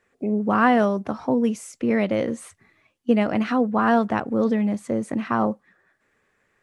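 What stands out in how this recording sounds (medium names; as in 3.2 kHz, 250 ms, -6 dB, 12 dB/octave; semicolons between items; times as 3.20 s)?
noise floor -69 dBFS; spectral tilt -3.0 dB/octave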